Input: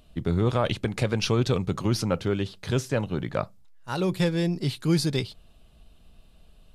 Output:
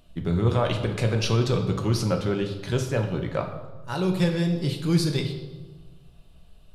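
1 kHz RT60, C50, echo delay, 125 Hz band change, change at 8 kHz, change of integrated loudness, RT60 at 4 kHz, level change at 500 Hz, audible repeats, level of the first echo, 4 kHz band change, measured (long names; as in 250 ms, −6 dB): 1.3 s, 7.5 dB, no echo audible, +2.5 dB, 0.0 dB, +1.0 dB, 1.0 s, +1.0 dB, no echo audible, no echo audible, 0.0 dB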